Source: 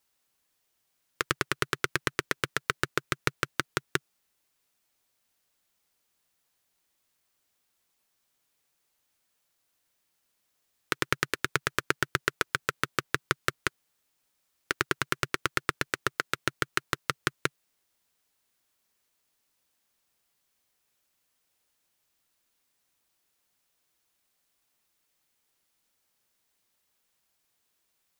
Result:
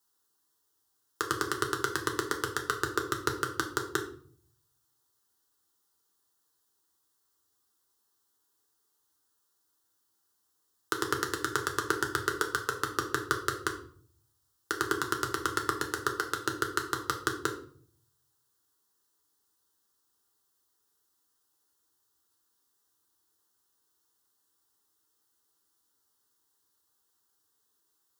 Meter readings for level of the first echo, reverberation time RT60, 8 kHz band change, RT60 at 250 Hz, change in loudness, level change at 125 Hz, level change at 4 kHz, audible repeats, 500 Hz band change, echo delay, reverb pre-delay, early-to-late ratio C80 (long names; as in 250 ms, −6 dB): no echo audible, 0.55 s, +0.5 dB, 0.80 s, −1.0 dB, −3.5 dB, −3.5 dB, no echo audible, +1.5 dB, no echo audible, 5 ms, 13.5 dB